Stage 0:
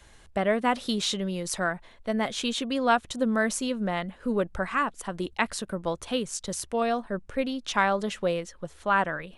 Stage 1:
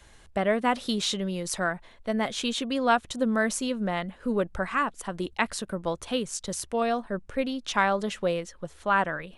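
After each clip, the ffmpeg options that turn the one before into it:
-af anull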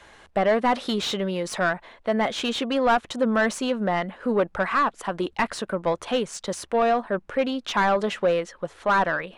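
-filter_complex "[0:a]asplit=2[s0][s1];[s1]highpass=f=720:p=1,volume=10,asoftclip=type=tanh:threshold=0.398[s2];[s0][s2]amix=inputs=2:normalize=0,lowpass=f=1400:p=1,volume=0.501,volume=0.841"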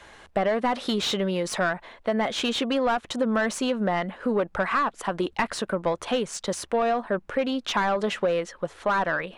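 -af "acompressor=threshold=0.0794:ratio=6,volume=1.19"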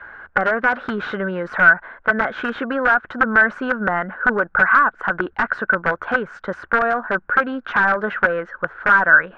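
-af "aeval=exprs='(mod(7.08*val(0)+1,2)-1)/7.08':c=same,lowpass=f=1500:t=q:w=10,volume=1.12"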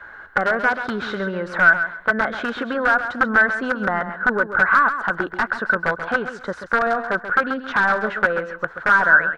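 -af "aexciter=amount=2.8:drive=5.6:freq=3800,aecho=1:1:134|268|402:0.316|0.0664|0.0139,volume=0.841"

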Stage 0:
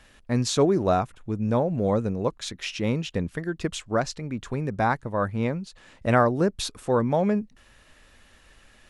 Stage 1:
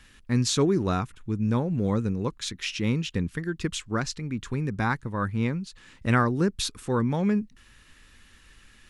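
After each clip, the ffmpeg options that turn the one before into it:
-af "equalizer=f=640:w=1.7:g=-14.5,volume=1.19"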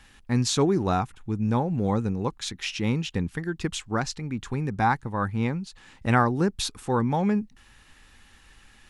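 -af "equalizer=f=800:w=3.5:g=10.5"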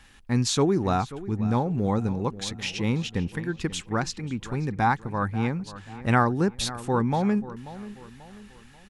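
-filter_complex "[0:a]asplit=2[s0][s1];[s1]adelay=537,lowpass=f=3300:p=1,volume=0.168,asplit=2[s2][s3];[s3]adelay=537,lowpass=f=3300:p=1,volume=0.42,asplit=2[s4][s5];[s5]adelay=537,lowpass=f=3300:p=1,volume=0.42,asplit=2[s6][s7];[s7]adelay=537,lowpass=f=3300:p=1,volume=0.42[s8];[s0][s2][s4][s6][s8]amix=inputs=5:normalize=0"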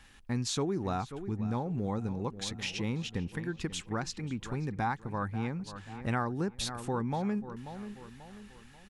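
-af "acompressor=threshold=0.0355:ratio=2,volume=0.668"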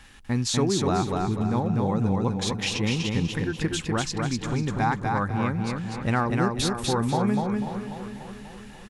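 -af "aecho=1:1:246|492|738|984:0.708|0.227|0.0725|0.0232,volume=2.24"

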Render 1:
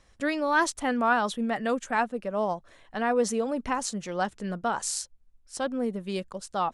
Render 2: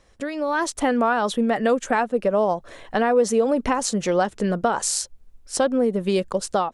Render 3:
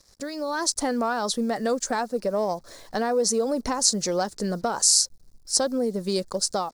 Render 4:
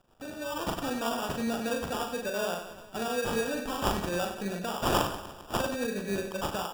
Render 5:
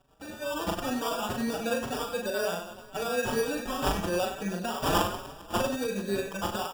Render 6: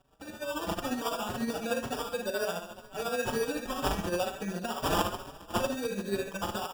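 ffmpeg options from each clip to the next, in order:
-af "acompressor=threshold=0.0224:ratio=4,equalizer=f=460:t=o:w=1.2:g=5.5,dynaudnorm=f=330:g=3:m=3.16,volume=1.26"
-af "acontrast=39,acrusher=bits=7:mix=0:aa=0.5,highshelf=f=3700:t=q:w=3:g=8,volume=0.316"
-filter_complex "[0:a]acrusher=samples=21:mix=1:aa=0.000001,asplit=2[s0][s1];[s1]aecho=0:1:40|96|174.4|284.2|437.8:0.631|0.398|0.251|0.158|0.1[s2];[s0][s2]amix=inputs=2:normalize=0,volume=0.376"
-filter_complex "[0:a]asplit=2[s0][s1];[s1]adelay=4.9,afreqshift=2.1[s2];[s0][s2]amix=inputs=2:normalize=1,volume=1.58"
-af "tremolo=f=14:d=0.51"

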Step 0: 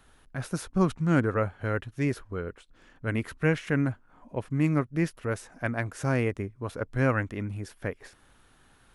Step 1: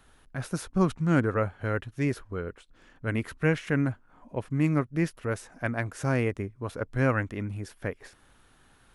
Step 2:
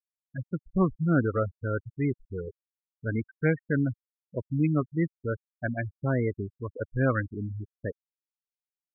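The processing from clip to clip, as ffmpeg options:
-af anull
-af "bandreject=f=880:w=12,afftfilt=real='re*gte(hypot(re,im),0.0794)':imag='im*gte(hypot(re,im),0.0794)':win_size=1024:overlap=0.75"

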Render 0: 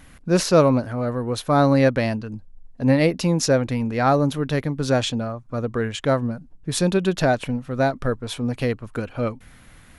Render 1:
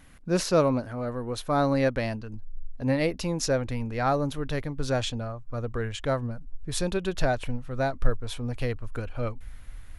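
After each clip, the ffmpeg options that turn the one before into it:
-af "asubboost=boost=9.5:cutoff=59,volume=0.501"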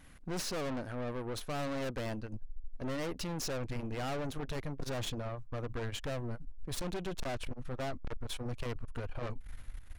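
-af "aeval=exprs='(tanh(56.2*val(0)+0.65)-tanh(0.65))/56.2':c=same"

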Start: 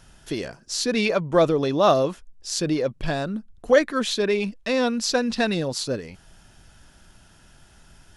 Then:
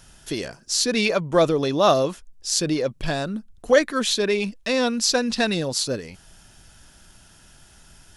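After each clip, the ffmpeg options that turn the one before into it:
-af "highshelf=f=3900:g=7.5"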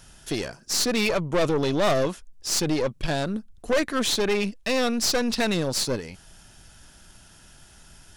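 -af "aeval=exprs='(tanh(11.2*val(0)+0.55)-tanh(0.55))/11.2':c=same,volume=1.33"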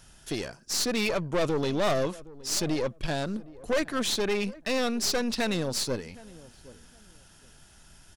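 -filter_complex "[0:a]asplit=2[s0][s1];[s1]adelay=767,lowpass=f=1000:p=1,volume=0.112,asplit=2[s2][s3];[s3]adelay=767,lowpass=f=1000:p=1,volume=0.24[s4];[s0][s2][s4]amix=inputs=3:normalize=0,volume=0.631"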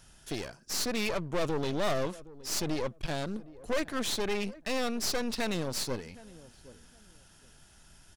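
-af "aeval=exprs='clip(val(0),-1,0.01)':c=same,volume=0.708"

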